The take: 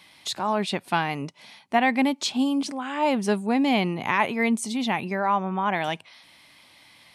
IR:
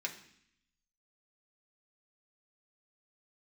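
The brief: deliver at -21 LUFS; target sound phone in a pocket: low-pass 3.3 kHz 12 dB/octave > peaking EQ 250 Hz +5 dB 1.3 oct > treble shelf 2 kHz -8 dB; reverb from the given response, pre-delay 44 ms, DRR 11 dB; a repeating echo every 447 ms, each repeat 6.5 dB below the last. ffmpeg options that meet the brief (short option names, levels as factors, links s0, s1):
-filter_complex "[0:a]aecho=1:1:447|894|1341|1788|2235|2682:0.473|0.222|0.105|0.0491|0.0231|0.0109,asplit=2[s0][s1];[1:a]atrim=start_sample=2205,adelay=44[s2];[s1][s2]afir=irnorm=-1:irlink=0,volume=0.237[s3];[s0][s3]amix=inputs=2:normalize=0,lowpass=3300,equalizer=f=250:t=o:w=1.3:g=5,highshelf=f=2000:g=-8,volume=1.19"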